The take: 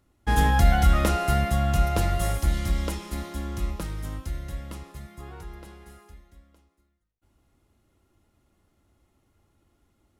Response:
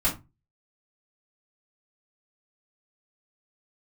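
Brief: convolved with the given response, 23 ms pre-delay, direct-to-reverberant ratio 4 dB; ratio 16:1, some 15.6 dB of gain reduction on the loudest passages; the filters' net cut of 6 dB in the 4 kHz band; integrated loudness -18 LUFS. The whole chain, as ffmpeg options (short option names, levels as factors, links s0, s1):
-filter_complex "[0:a]equalizer=f=4000:t=o:g=-8.5,acompressor=threshold=0.0398:ratio=16,asplit=2[s0][s1];[1:a]atrim=start_sample=2205,adelay=23[s2];[s1][s2]afir=irnorm=-1:irlink=0,volume=0.178[s3];[s0][s3]amix=inputs=2:normalize=0,volume=3.55"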